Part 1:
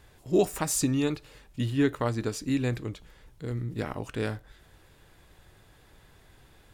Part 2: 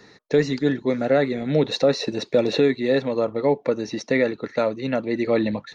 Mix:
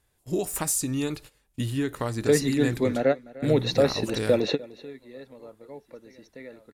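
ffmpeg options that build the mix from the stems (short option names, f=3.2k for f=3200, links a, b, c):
-filter_complex "[0:a]agate=range=-17dB:threshold=-44dB:ratio=16:detection=peak,equalizer=f=11k:w=0.68:g=11.5,acompressor=threshold=-25dB:ratio=6,volume=1.5dB,asplit=2[a][b];[1:a]adelay=1950,volume=-2.5dB,asplit=2[c][d];[d]volume=-20.5dB[e];[b]apad=whole_len=339164[f];[c][f]sidechaingate=range=-33dB:threshold=-55dB:ratio=16:detection=peak[g];[e]aecho=0:1:300:1[h];[a][g][h]amix=inputs=3:normalize=0"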